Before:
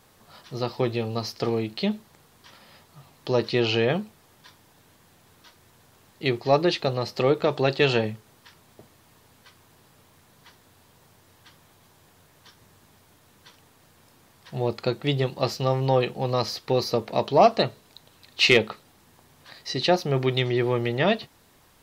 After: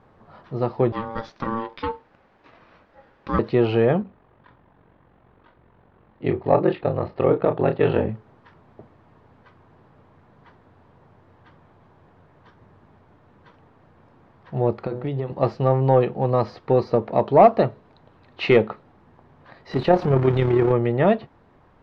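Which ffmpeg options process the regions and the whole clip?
ffmpeg -i in.wav -filter_complex "[0:a]asettb=1/sr,asplit=3[link_01][link_02][link_03];[link_01]atrim=end=0.924[link_04];[link_02]atrim=start=0.92:end=3.39,asetpts=PTS-STARTPTS,afade=type=in:duration=0.004:curve=qsin,afade=type=out:start_time=2.466:duration=0.004:curve=qsin,lowpass=6100,tiltshelf=frequency=720:gain=-5.5,aeval=exprs='val(0)*sin(2*PI*680*n/s)':channel_layout=same[link_05];[link_03]atrim=start=3.386[link_06];[link_04][link_05]acrossfade=duration=0.004:curve1=hsin:curve2=qsin[link_07];[link_07][link_06]acrossfade=duration=0.004:curve1=qsin:curve2=hsin,asettb=1/sr,asplit=3[link_08][link_09][link_10];[link_08]atrim=end=4.024[link_11];[link_09]atrim=start=4.02:end=8.09,asetpts=PTS-STARTPTS,afade=type=in:duration=0.004:curve=qsin,afade=type=out:start_time=4.066:duration=0.004:curve=qsin,aeval=exprs='val(0)*sin(2*PI*23*n/s)':channel_layout=same,lowpass=frequency=3800:width=0.5412,lowpass=frequency=3800:width=1.3066,asplit=2[link_12][link_13];[link_13]adelay=32,volume=-8.5dB[link_14];[link_12][link_14]amix=inputs=2:normalize=0,atrim=end_sample=179487[link_15];[link_10]atrim=start=8.086[link_16];[link_11][link_15]acrossfade=duration=0.004:curve1=hsin:curve2=qsin[link_17];[link_17][link_16]acrossfade=duration=0.004:curve1=qsin:curve2=hsin,asettb=1/sr,asplit=3[link_18][link_19][link_20];[link_18]atrim=end=14.714[link_21];[link_19]atrim=start=14.71:end=15.32,asetpts=PTS-STARTPTS,afade=type=in:duration=0.004:curve=qsin,afade=type=out:start_time=0.606:duration=0.004:curve=qsin,bandreject=frequency=123.6:width_type=h:width=4,bandreject=frequency=247.2:width_type=h:width=4,bandreject=frequency=370.8:width_type=h:width=4,bandreject=frequency=494.4:width_type=h:width=4,bandreject=frequency=618:width_type=h:width=4,bandreject=frequency=741.6:width_type=h:width=4,bandreject=frequency=865.2:width_type=h:width=4,bandreject=frequency=988.8:width_type=h:width=4,bandreject=frequency=1112.4:width_type=h:width=4,bandreject=frequency=1236:width_type=h:width=4,bandreject=frequency=1359.6:width_type=h:width=4,bandreject=frequency=1483.2:width_type=h:width=4,bandreject=frequency=1606.8:width_type=h:width=4,bandreject=frequency=1730.4:width_type=h:width=4,bandreject=frequency=1854:width_type=h:width=4,bandreject=frequency=1977.6:width_type=h:width=4,acompressor=threshold=-26dB:ratio=12:attack=3.2:release=140:knee=1:detection=peak[link_22];[link_20]atrim=start=15.316[link_23];[link_21][link_22]acrossfade=duration=0.004:curve1=hsin:curve2=qsin[link_24];[link_24][link_23]acrossfade=duration=0.004:curve1=qsin:curve2=hsin,asettb=1/sr,asplit=3[link_25][link_26][link_27];[link_25]atrim=end=19.714[link_28];[link_26]atrim=start=19.71:end=20.72,asetpts=PTS-STARTPTS,afade=type=in:duration=0.004:curve=qsin,afade=type=out:start_time=1.006:duration=0.004:curve=qsin,aeval=exprs='val(0)+0.5*0.0596*sgn(val(0))':channel_layout=same,tremolo=f=35:d=0.462[link_29];[link_27]atrim=start=20.716[link_30];[link_28][link_29]acrossfade=duration=0.004:curve1=hsin:curve2=qsin[link_31];[link_31][link_30]acrossfade=duration=0.004:curve1=qsin:curve2=hsin,lowpass=1300,acontrast=31" out.wav

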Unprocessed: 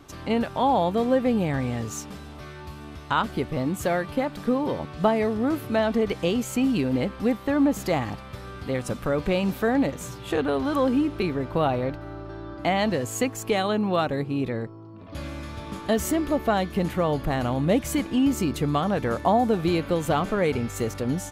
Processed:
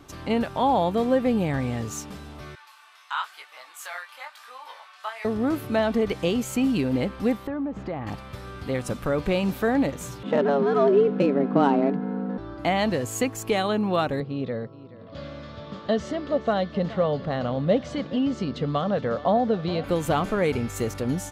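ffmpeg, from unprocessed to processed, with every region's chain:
ffmpeg -i in.wav -filter_complex "[0:a]asettb=1/sr,asplit=3[link_01][link_02][link_03];[link_01]atrim=end=2.554[link_04];[link_02]atrim=start=2.55:end=5.25,asetpts=PTS-STARTPTS,afade=type=in:duration=0.004:curve=qsin,afade=type=out:start_time=2.696:duration=0.004:curve=qsin,highpass=frequency=1000:width=0.5412,highpass=frequency=1000:width=1.3066,flanger=delay=15.5:depth=7.9:speed=1[link_05];[link_03]atrim=start=5.246[link_06];[link_04][link_05]acrossfade=duration=0.004:curve1=hsin:curve2=qsin[link_07];[link_07][link_06]acrossfade=duration=0.004:curve1=qsin:curve2=hsin,asettb=1/sr,asplit=3[link_08][link_09][link_10];[link_08]atrim=end=7.474[link_11];[link_09]atrim=start=7.47:end=8.07,asetpts=PTS-STARTPTS,afade=type=in:duration=0.004:curve=qsin,afade=type=out:start_time=0.596:duration=0.004:curve=qsin,lowpass=3300,highshelf=frequency=2500:gain=-11.5,acompressor=threshold=-27dB:ratio=4:attack=3.2:release=140:knee=1:detection=peak[link_12];[link_10]atrim=start=8.066[link_13];[link_11][link_12]acrossfade=duration=0.004:curve1=hsin:curve2=qsin[link_14];[link_14][link_13]acrossfade=duration=0.004:curve1=qsin:curve2=hsin,asettb=1/sr,asplit=3[link_15][link_16][link_17];[link_15]atrim=end=10.234[link_18];[link_16]atrim=start=10.23:end=12.38,asetpts=PTS-STARTPTS,afade=type=in:duration=0.004:curve=qsin,afade=type=out:start_time=2.146:duration=0.004:curve=qsin,aemphasis=mode=reproduction:type=bsi,afreqshift=140,adynamicsmooth=sensitivity=3:basefreq=3100[link_19];[link_17]atrim=start=12.376[link_20];[link_18][link_19]acrossfade=duration=0.004:curve1=hsin:curve2=qsin[link_21];[link_21][link_20]acrossfade=duration=0.004:curve1=qsin:curve2=hsin,asettb=1/sr,asplit=3[link_22][link_23][link_24];[link_22]atrim=end=14.204[link_25];[link_23]atrim=start=14.2:end=19.84,asetpts=PTS-STARTPTS,afade=type=in:duration=0.004:curve=qsin,afade=type=out:start_time=5.636:duration=0.004:curve=qsin,highpass=120,equalizer=frequency=330:width_type=q:width=4:gain=-10,equalizer=frequency=540:width_type=q:width=4:gain=5,equalizer=frequency=900:width_type=q:width=4:gain=-7,equalizer=frequency=1600:width_type=q:width=4:gain=-3,equalizer=frequency=2400:width_type=q:width=4:gain=-9,lowpass=frequency=4700:width=0.5412,lowpass=frequency=4700:width=1.3066,aecho=1:1:424:0.133,atrim=end_sample=248724[link_26];[link_24]atrim=start=19.836[link_27];[link_25][link_26]acrossfade=duration=0.004:curve1=hsin:curve2=qsin[link_28];[link_28][link_27]acrossfade=duration=0.004:curve1=qsin:curve2=hsin" out.wav

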